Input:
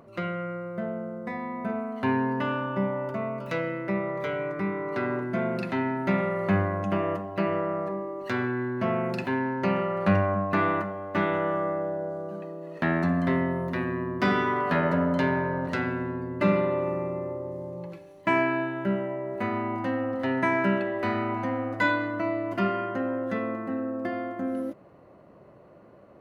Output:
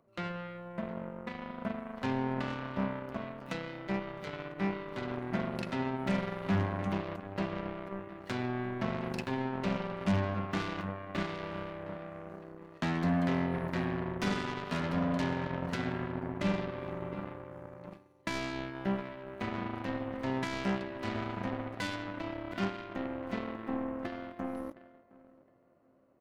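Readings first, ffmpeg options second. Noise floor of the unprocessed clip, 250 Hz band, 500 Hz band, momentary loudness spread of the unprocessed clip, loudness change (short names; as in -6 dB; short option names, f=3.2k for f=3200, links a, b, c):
-52 dBFS, -6.5 dB, -10.0 dB, 9 LU, -7.5 dB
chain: -filter_complex "[0:a]asplit=2[a][b];[b]adelay=713,lowpass=f=2k:p=1,volume=-13dB,asplit=2[c][d];[d]adelay=713,lowpass=f=2k:p=1,volume=0.37,asplit=2[e][f];[f]adelay=713,lowpass=f=2k:p=1,volume=0.37,asplit=2[g][h];[h]adelay=713,lowpass=f=2k:p=1,volume=0.37[i];[c][e][g][i]amix=inputs=4:normalize=0[j];[a][j]amix=inputs=2:normalize=0,asoftclip=type=tanh:threshold=-23dB,acrossover=split=300|3000[k][l][m];[l]acompressor=threshold=-37dB:ratio=4[n];[k][n][m]amix=inputs=3:normalize=0,aeval=exprs='0.112*(cos(1*acos(clip(val(0)/0.112,-1,1)))-cos(1*PI/2))+0.0141*(cos(7*acos(clip(val(0)/0.112,-1,1)))-cos(7*PI/2))':c=same"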